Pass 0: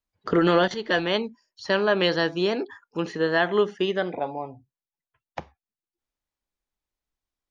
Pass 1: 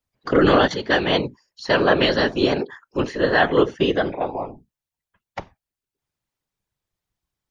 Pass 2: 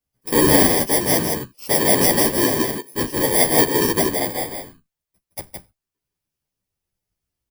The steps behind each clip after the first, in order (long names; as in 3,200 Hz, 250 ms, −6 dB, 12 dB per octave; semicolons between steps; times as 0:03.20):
random phases in short frames; level +4.5 dB
samples in bit-reversed order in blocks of 32 samples; single-tap delay 164 ms −3.5 dB; barber-pole flanger 10.7 ms −2.2 Hz; level +3 dB